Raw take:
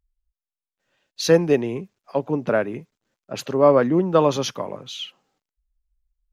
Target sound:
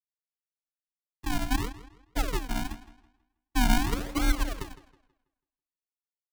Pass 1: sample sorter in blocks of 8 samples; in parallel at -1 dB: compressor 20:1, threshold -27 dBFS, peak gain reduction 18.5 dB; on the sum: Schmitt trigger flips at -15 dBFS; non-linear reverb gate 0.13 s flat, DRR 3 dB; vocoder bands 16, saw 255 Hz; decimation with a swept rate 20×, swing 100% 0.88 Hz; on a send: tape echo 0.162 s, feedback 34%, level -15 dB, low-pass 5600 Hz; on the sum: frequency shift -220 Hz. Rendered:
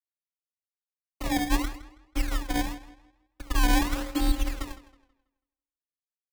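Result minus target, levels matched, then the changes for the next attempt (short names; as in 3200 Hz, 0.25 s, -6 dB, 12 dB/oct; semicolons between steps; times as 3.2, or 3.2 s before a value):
compressor: peak gain reduction -6.5 dB; decimation with a swept rate: distortion -9 dB
change: compressor 20:1, threshold -34 dBFS, peak gain reduction 25.5 dB; change: decimation with a swept rate 42×, swing 100% 0.88 Hz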